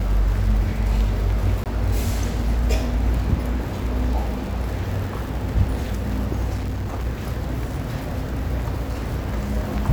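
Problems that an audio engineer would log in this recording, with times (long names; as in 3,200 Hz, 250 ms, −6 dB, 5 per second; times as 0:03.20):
surface crackle −29 dBFS
0:01.64–0:01.66: drop-out 18 ms
0:06.56–0:07.07: clipping −22.5 dBFS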